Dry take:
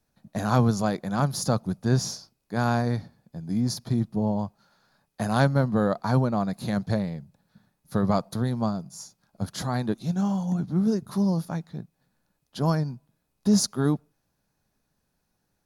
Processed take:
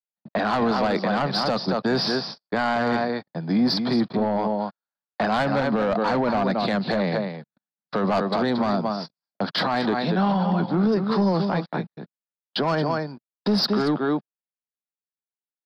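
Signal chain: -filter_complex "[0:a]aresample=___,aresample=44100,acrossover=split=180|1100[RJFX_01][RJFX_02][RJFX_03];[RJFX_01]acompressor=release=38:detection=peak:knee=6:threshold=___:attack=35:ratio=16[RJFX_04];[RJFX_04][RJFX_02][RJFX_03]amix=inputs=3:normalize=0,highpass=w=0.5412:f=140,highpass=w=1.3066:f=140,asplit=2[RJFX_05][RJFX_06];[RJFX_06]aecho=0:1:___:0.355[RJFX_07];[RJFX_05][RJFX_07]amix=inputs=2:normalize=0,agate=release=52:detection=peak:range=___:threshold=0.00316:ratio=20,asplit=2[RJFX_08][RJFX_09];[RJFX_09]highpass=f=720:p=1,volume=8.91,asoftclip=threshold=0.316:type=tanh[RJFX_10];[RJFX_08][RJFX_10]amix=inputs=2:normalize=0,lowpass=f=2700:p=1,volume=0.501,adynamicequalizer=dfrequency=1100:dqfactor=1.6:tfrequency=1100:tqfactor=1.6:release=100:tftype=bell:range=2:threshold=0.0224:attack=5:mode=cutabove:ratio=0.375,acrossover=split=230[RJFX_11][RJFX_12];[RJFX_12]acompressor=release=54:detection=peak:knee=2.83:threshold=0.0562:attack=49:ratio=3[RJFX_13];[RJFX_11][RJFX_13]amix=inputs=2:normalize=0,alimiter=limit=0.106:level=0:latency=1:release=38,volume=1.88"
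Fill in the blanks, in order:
11025, 0.01, 226, 0.00398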